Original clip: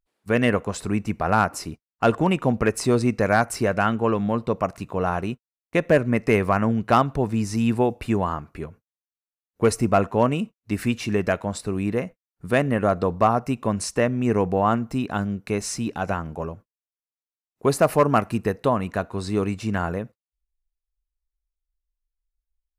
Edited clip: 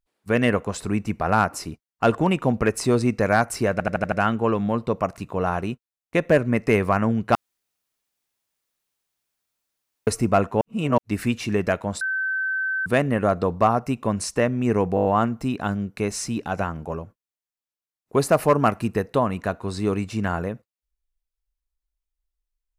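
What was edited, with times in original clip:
3.72 s: stutter 0.08 s, 6 plays
6.95–9.67 s: room tone
10.21–10.58 s: reverse
11.61–12.46 s: bleep 1.54 kHz -22 dBFS
14.55 s: stutter 0.02 s, 6 plays

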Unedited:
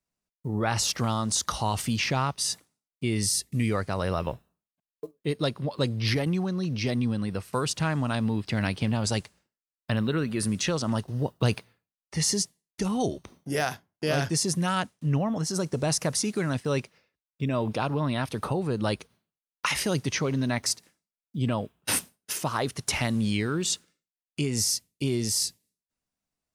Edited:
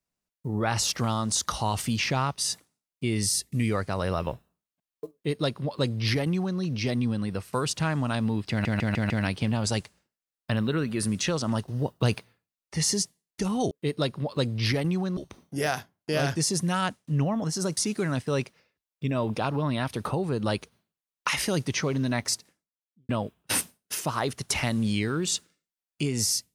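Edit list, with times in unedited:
5.13–6.59 s: copy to 13.11 s
8.50 s: stutter 0.15 s, 5 plays
15.71–16.15 s: delete
20.65–21.47 s: studio fade out

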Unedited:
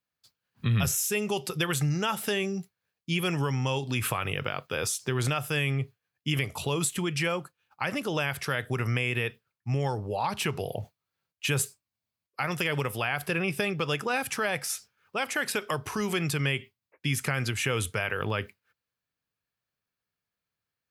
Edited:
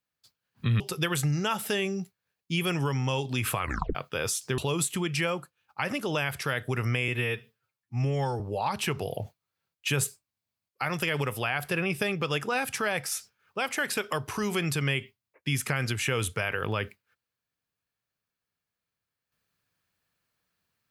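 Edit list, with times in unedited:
0.80–1.38 s: delete
4.19 s: tape stop 0.34 s
5.16–6.60 s: delete
9.10–9.98 s: stretch 1.5×

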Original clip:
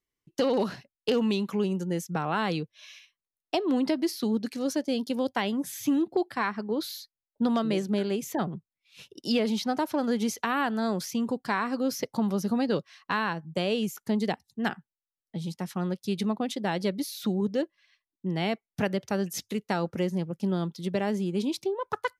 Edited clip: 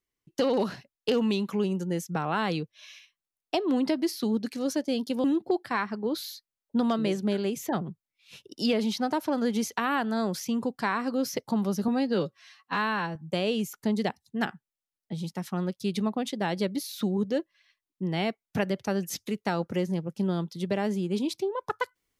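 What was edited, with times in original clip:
5.24–5.90 s: delete
12.54–13.39 s: stretch 1.5×

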